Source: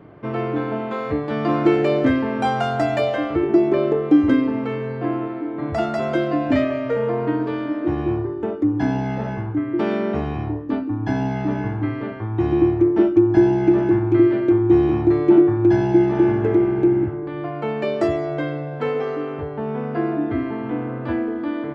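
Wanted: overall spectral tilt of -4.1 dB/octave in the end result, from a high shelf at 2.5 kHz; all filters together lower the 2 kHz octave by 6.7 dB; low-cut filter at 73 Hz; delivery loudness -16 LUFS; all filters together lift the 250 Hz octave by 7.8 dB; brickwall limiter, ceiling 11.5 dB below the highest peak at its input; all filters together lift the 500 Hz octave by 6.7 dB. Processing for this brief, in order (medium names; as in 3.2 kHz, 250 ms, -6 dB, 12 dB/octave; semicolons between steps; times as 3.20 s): high-pass 73 Hz; peaking EQ 250 Hz +9 dB; peaking EQ 500 Hz +5.5 dB; peaking EQ 2 kHz -7 dB; treble shelf 2.5 kHz -5.5 dB; trim +0.5 dB; peak limiter -7.5 dBFS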